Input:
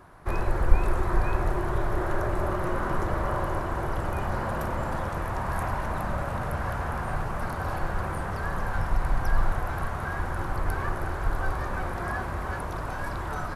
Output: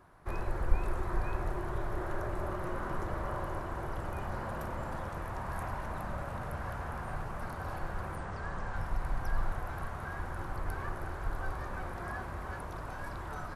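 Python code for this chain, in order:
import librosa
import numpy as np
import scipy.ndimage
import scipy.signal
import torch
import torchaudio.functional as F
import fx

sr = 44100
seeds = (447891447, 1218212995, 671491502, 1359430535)

y = fx.steep_lowpass(x, sr, hz=8900.0, slope=36, at=(8.16, 8.76))
y = y * librosa.db_to_amplitude(-8.5)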